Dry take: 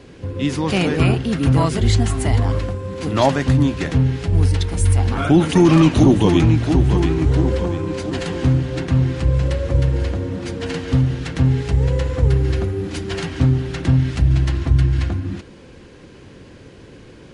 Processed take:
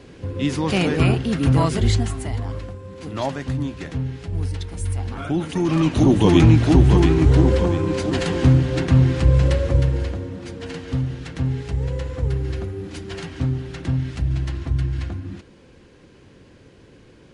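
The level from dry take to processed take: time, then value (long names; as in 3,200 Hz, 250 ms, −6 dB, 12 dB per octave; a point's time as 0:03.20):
0:01.85 −1.5 dB
0:02.30 −9.5 dB
0:05.59 −9.5 dB
0:06.43 +2 dB
0:09.54 +2 dB
0:10.35 −7 dB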